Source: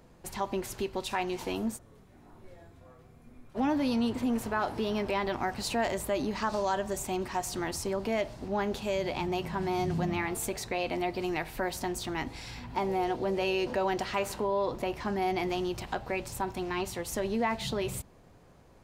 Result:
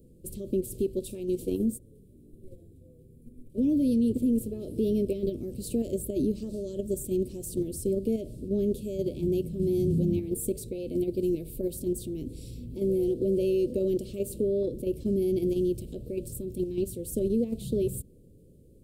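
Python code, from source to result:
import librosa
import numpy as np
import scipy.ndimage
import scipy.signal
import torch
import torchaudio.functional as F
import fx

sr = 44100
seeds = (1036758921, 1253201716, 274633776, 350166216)

p1 = scipy.signal.sosfilt(scipy.signal.cheby2(4, 40, [740.0, 2000.0], 'bandstop', fs=sr, output='sos'), x)
p2 = fx.band_shelf(p1, sr, hz=4100.0, db=-15.5, octaves=1.7)
p3 = fx.level_steps(p2, sr, step_db=17)
y = p2 + F.gain(torch.from_numpy(p3), 3.0).numpy()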